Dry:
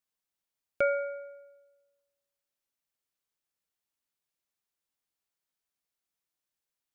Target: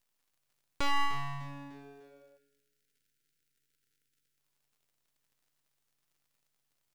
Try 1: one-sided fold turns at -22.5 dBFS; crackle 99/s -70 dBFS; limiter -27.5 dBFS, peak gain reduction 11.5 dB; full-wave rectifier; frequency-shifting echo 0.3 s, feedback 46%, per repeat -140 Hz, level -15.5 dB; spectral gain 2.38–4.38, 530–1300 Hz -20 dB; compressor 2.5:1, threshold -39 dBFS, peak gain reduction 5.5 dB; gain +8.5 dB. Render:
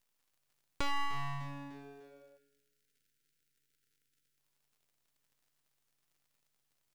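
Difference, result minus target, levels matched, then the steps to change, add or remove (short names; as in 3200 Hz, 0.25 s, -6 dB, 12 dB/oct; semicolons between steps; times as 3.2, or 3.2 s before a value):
compressor: peak gain reduction +5.5 dB
remove: compressor 2.5:1, threshold -39 dBFS, peak gain reduction 5.5 dB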